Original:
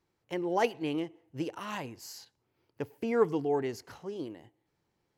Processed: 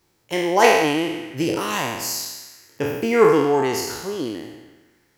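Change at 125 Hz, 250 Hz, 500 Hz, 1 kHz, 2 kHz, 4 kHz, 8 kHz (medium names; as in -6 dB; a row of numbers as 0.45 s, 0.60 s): +11.0 dB, +11.0 dB, +12.5 dB, +15.0 dB, +17.5 dB, +18.0 dB, +21.5 dB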